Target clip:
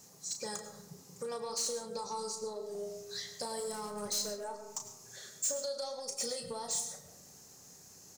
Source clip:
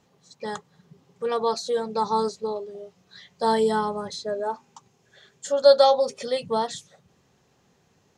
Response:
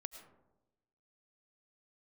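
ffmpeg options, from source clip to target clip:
-filter_complex "[0:a]alimiter=limit=-16.5dB:level=0:latency=1:release=85,acompressor=threshold=-37dB:ratio=16,asettb=1/sr,asplit=3[a][b][c];[a]atrim=end=3.604[d];[b]atrim=start=3.6:end=4.45,asetpts=PTS-STARTPTS,afade=t=in:d=0.004:c=qsin,afade=t=out:st=0.846:d=0.004:c=qsin,asoftclip=type=hard:threshold=-37dB[e];[c]atrim=start=4.446[f];[d][e]acrossfade=d=0.004:c1=hsin:c2=qsin[g];[g][f]acrossfade=d=0.004:c1=qsin:c2=hsin,aexciter=amount=9.8:drive=3.9:freq=4.8k,asoftclip=type=tanh:threshold=-29dB,asplit=2[h][i];[i]adelay=34,volume=-8dB[j];[h][j]amix=inputs=2:normalize=0[k];[1:a]atrim=start_sample=2205[l];[k][l]afir=irnorm=-1:irlink=0,volume=4dB"

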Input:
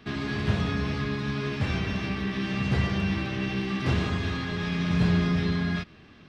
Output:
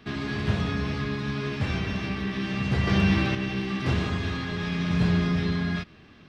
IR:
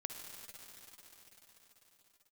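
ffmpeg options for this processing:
-filter_complex "[0:a]asettb=1/sr,asplit=3[a][b][c];[a]atrim=end=2.874[d];[b]atrim=start=2.87:end=3.35,asetpts=PTS-STARTPTS,afade=t=in:d=0.004:c=qsin,afade=t=out:st=0.476:d=0.004:c=qsin,acontrast=47[e];[c]atrim=start=3.346[f];[d][e]acrossfade=d=0.004:c1=hsin:c2=qsin[g];[g][f]acrossfade=d=0.004:c1=qsin:c2=hsin"

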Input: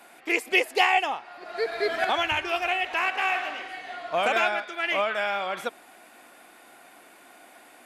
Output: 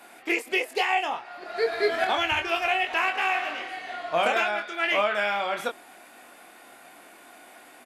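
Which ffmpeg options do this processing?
-filter_complex "[0:a]alimiter=limit=-14.5dB:level=0:latency=1:release=308,asplit=2[a][b];[b]adelay=24,volume=-6dB[c];[a][c]amix=inputs=2:normalize=0,volume=1dB"

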